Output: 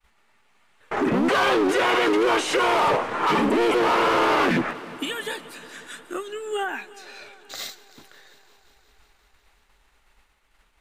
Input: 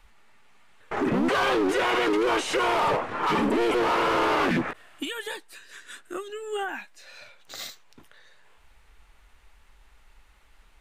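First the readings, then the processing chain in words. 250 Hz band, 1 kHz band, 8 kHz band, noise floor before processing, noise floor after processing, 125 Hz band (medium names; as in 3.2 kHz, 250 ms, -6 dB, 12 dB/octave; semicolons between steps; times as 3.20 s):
+3.0 dB, +3.5 dB, +3.5 dB, -57 dBFS, -64 dBFS, +1.5 dB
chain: bass shelf 91 Hz -8 dB; expander -54 dBFS; multi-head delay 179 ms, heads first and second, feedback 69%, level -23 dB; trim +3.5 dB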